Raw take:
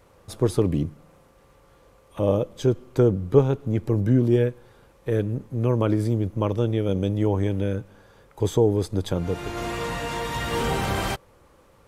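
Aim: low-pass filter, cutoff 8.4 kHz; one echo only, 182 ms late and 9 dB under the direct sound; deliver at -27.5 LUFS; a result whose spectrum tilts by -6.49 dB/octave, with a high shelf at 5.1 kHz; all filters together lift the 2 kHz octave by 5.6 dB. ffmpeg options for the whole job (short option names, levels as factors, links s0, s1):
-af "lowpass=8400,equalizer=f=2000:t=o:g=8,highshelf=f=5100:g=-7.5,aecho=1:1:182:0.355,volume=0.631"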